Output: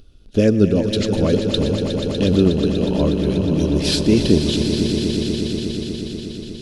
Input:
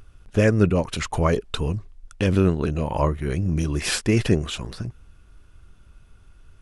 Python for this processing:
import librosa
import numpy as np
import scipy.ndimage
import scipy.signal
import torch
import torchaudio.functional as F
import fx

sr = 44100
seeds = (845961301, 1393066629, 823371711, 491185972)

p1 = fx.graphic_eq(x, sr, hz=(125, 250, 500, 1000, 2000, 4000, 8000), db=(-3, 8, 4, -10, -8, 12, -5))
y = p1 + fx.echo_swell(p1, sr, ms=121, loudest=5, wet_db=-10.5, dry=0)